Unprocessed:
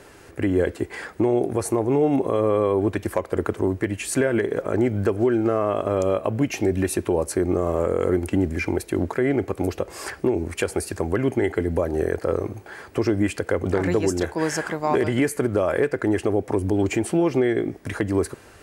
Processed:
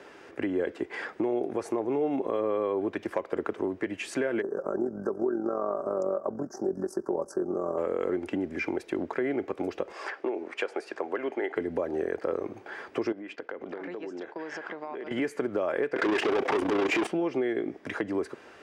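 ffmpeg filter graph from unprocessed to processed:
-filter_complex "[0:a]asettb=1/sr,asplit=3[s0][s1][s2];[s0]atrim=end=4.424[s3];[s1]atrim=start=4.42:end=7.78,asetpts=PTS-STARTPTS,afade=t=in:d=0.004:c=qsin,afade=t=out:st=3.356:d=0.004:c=qsin,asuperstop=centerf=2800:order=12:qfactor=0.82,aecho=1:1:5.2:0.43,atrim=end_sample=148176,tremolo=f=45:d=0.621[s4];[s2]atrim=start=7.776[s5];[s3][s4]acrossfade=d=0.004:c1=hsin:c2=qsin[s6];[s6][s5]acrossfade=d=0.004:c1=qsin:c2=hsin,asettb=1/sr,asplit=3[s7][s8][s9];[s7]atrim=end=9.924[s10];[s8]atrim=start=9.92:end=11.56,asetpts=PTS-STARTPTS,afade=t=in:d=0.004:c=qsin,afade=t=out:st=1.636:d=0.004:c=qsin,highpass=450,aemphasis=mode=reproduction:type=50fm[s11];[s9]atrim=start=11.556[s12];[s10][s11]acrossfade=d=0.004:c1=hsin:c2=qsin[s13];[s13][s12]acrossfade=d=0.004:c1=qsin:c2=hsin,asettb=1/sr,asplit=3[s14][s15][s16];[s14]atrim=end=13.124[s17];[s15]atrim=start=13.12:end=15.11,asetpts=PTS-STARTPTS,afade=t=in:d=0.004:c=qsin,afade=t=out:st=1.986:d=0.004:c=qsin,agate=range=0.0224:threshold=0.0282:ratio=3:release=100:detection=peak,highpass=210,lowpass=4400,acompressor=threshold=0.0282:ratio=16:attack=3.2:release=140:knee=1:detection=peak[s18];[s16]atrim=start=15.106[s19];[s17][s18]acrossfade=d=0.004:c1=hsin:c2=qsin[s20];[s20][s19]acrossfade=d=0.004:c1=qsin:c2=hsin,asettb=1/sr,asplit=3[s21][s22][s23];[s21]atrim=end=15.964[s24];[s22]atrim=start=15.96:end=17.07,asetpts=PTS-STARTPTS,afade=t=in:d=0.004:c=qsin,afade=t=out:st=1.106:d=0.004:c=qsin,tremolo=f=30:d=0.889,asplit=2[s25][s26];[s26]highpass=f=720:p=1,volume=63.1,asoftclip=type=tanh:threshold=0.299[s27];[s25][s27]amix=inputs=2:normalize=0,lowpass=f=4900:p=1,volume=0.501[s28];[s23]atrim=start=17.066[s29];[s24][s28]acrossfade=d=0.004:c1=hsin:c2=qsin[s30];[s30][s29]acrossfade=d=0.004:c1=qsin:c2=hsin,bandreject=f=4200:w=13,acompressor=threshold=0.0447:ratio=2,acrossover=split=200 5400:gain=0.1 1 0.1[s31][s32][s33];[s31][s32][s33]amix=inputs=3:normalize=0,volume=0.891"

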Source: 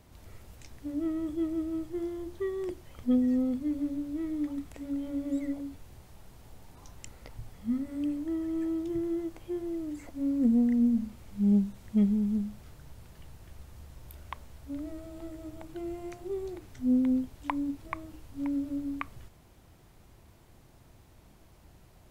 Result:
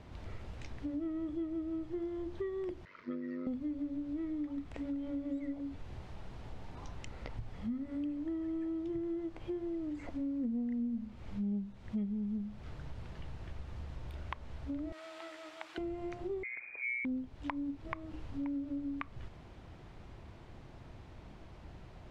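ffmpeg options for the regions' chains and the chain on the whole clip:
-filter_complex "[0:a]asettb=1/sr,asplit=3[s0][s1][s2];[s0]atrim=end=2.854[s3];[s1]atrim=start=2.85:end=3.47,asetpts=PTS-STARTPTS,afade=t=in:d=0.004:c=qsin,afade=t=out:st=0.616:d=0.004:c=qsin,tremolo=f=96:d=0.71,asuperstop=centerf=780:order=12:qfactor=3.3,highpass=460,equalizer=f=540:t=q:w=4:g=-8,equalizer=f=790:t=q:w=4:g=-8,equalizer=f=1400:t=q:w=4:g=6,equalizer=f=2000:t=q:w=4:g=6,equalizer=f=3200:t=q:w=4:g=-10,lowpass=f=5100:w=0.5412,lowpass=f=5100:w=1.3066[s4];[s2]atrim=start=3.466[s5];[s3][s4]acrossfade=d=0.004:c1=hsin:c2=qsin[s6];[s6][s5]acrossfade=d=0.004:c1=qsin:c2=hsin,asettb=1/sr,asplit=3[s7][s8][s9];[s7]atrim=end=14.924[s10];[s8]atrim=start=14.92:end=15.78,asetpts=PTS-STARTPTS,afade=t=in:d=0.004:c=qsin,afade=t=out:st=0.856:d=0.004:c=qsin,highpass=1300,acontrast=68[s11];[s9]atrim=start=15.776[s12];[s10][s11]acrossfade=d=0.004:c1=hsin:c2=qsin[s13];[s13][s12]acrossfade=d=0.004:c1=qsin:c2=hsin,asettb=1/sr,asplit=3[s14][s15][s16];[s14]atrim=end=16.434[s17];[s15]atrim=start=16.43:end=17.05,asetpts=PTS-STARTPTS,afade=t=in:d=0.004:c=qsin,afade=t=out:st=0.616:d=0.004:c=qsin,aeval=exprs='val(0)*sin(2*PI*61*n/s)':c=same,lowpass=f=2100:t=q:w=0.5098,lowpass=f=2100:t=q:w=0.6013,lowpass=f=2100:t=q:w=0.9,lowpass=f=2100:t=q:w=2.563,afreqshift=-2500,equalizer=f=1100:w=2:g=-5.5[s18];[s16]atrim=start=17.046[s19];[s17][s18]acrossfade=d=0.004:c1=hsin:c2=qsin[s20];[s20][s19]acrossfade=d=0.004:c1=qsin:c2=hsin,acompressor=threshold=0.00708:ratio=4,lowpass=3600,volume=1.88"

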